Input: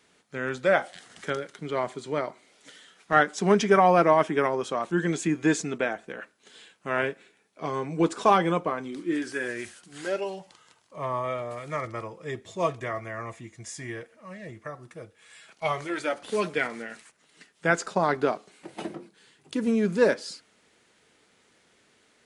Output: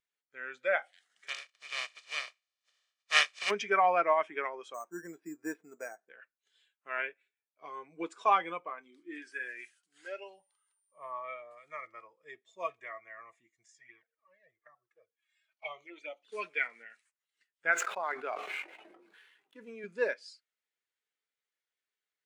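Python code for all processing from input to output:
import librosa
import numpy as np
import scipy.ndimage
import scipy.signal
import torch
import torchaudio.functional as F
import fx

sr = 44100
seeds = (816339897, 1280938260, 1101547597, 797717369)

y = fx.spec_flatten(x, sr, power=0.18, at=(1.27, 3.49), fade=0.02)
y = fx.lowpass(y, sr, hz=5800.0, slope=12, at=(1.27, 3.49), fade=0.02)
y = fx.comb(y, sr, ms=1.7, depth=0.42, at=(1.27, 3.49), fade=0.02)
y = fx.chain(y, sr, fx.lowpass(hz=1400.0, slope=12),
    fx.resample_bad(factor=6, down='none', up='hold'), at=(4.74, 6.09))
y = fx.high_shelf(y, sr, hz=4000.0, db=-4.5, at=(10.33, 11.11), fade=0.02)
y = fx.dmg_tone(y, sr, hz=9100.0, level_db=-60.0, at=(10.33, 11.11), fade=0.02)
y = fx.chain(y, sr, fx.lowpass(hz=6800.0, slope=12),
    fx.peak_eq(hz=84.0, db=-7.0, octaves=0.46),
    fx.env_flanger(rest_ms=4.1, full_db=-27.5), at=(13.66, 16.32))
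y = fx.chain(y, sr, fx.median_filter(points=9),
    fx.highpass(hz=350.0, slope=6),
    fx.sustainer(db_per_s=28.0), at=(17.72, 19.84))
y = fx.highpass(y, sr, hz=1300.0, slope=6)
y = fx.dynamic_eq(y, sr, hz=2400.0, q=2.3, threshold_db=-49.0, ratio=4.0, max_db=6)
y = fx.spectral_expand(y, sr, expansion=1.5)
y = y * librosa.db_to_amplitude(-4.0)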